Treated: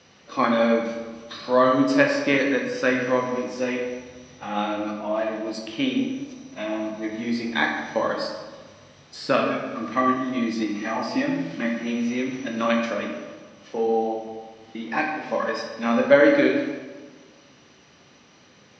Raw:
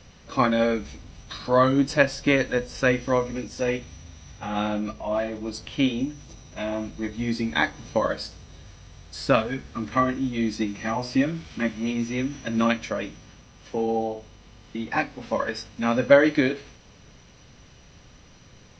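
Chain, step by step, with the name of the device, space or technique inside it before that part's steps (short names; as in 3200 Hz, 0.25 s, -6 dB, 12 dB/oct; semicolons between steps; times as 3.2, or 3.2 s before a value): supermarket ceiling speaker (BPF 220–6300 Hz; reverb RT60 1.5 s, pre-delay 13 ms, DRR 0.5 dB); gain -1 dB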